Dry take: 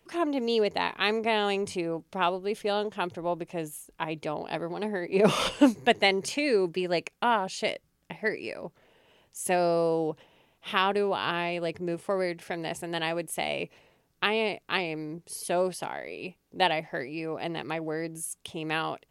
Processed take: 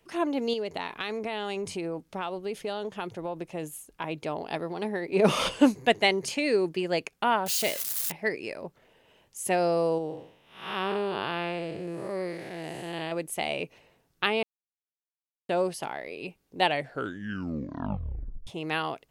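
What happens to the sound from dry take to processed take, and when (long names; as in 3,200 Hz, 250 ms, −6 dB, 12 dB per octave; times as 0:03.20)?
0:00.53–0:04.04: downward compressor, threshold −28 dBFS
0:07.46–0:08.12: spike at every zero crossing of −22 dBFS
0:09.98–0:13.12: spectrum smeared in time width 235 ms
0:14.43–0:15.49: silence
0:16.62: tape stop 1.85 s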